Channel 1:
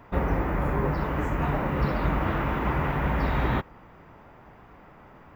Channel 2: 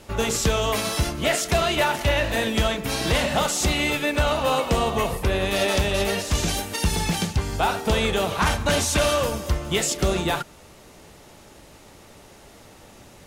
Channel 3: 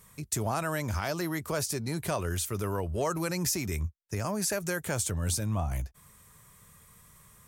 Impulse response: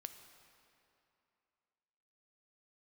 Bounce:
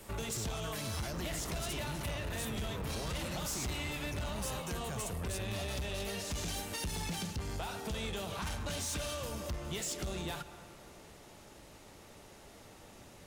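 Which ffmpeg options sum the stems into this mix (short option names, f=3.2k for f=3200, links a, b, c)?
-filter_complex "[0:a]adelay=1000,volume=-13.5dB[a];[1:a]volume=-9.5dB,asplit=2[b][c];[c]volume=-4dB[d];[2:a]volume=0.5dB[e];[b][e]amix=inputs=2:normalize=0,acompressor=threshold=-35dB:ratio=3,volume=0dB[f];[3:a]atrim=start_sample=2205[g];[d][g]afir=irnorm=-1:irlink=0[h];[a][f][h]amix=inputs=3:normalize=0,acrossover=split=200|3000[i][j][k];[j]acompressor=threshold=-37dB:ratio=6[l];[i][l][k]amix=inputs=3:normalize=0,asoftclip=type=tanh:threshold=-32.5dB"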